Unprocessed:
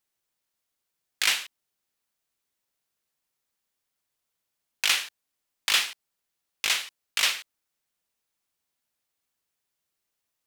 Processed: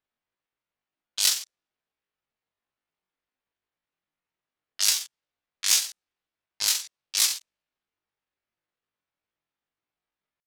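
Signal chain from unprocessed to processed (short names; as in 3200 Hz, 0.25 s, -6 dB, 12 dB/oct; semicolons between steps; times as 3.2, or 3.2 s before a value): pitch shift +11.5 st; low-pass opened by the level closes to 2700 Hz, open at -23.5 dBFS; gain +2.5 dB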